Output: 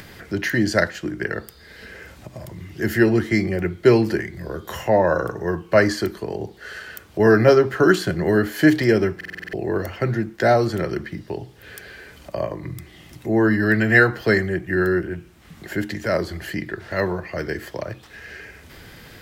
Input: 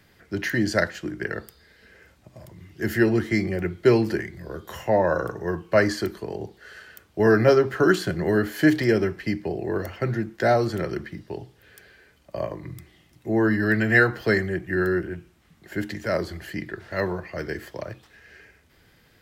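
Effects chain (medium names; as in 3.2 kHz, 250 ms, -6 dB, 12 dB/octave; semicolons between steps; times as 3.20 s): in parallel at -2.5 dB: upward compressor, threshold -24 dBFS; on the sum: bit crusher 12-bit; buffer glitch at 9.16 s, samples 2048, times 7; trim -1.5 dB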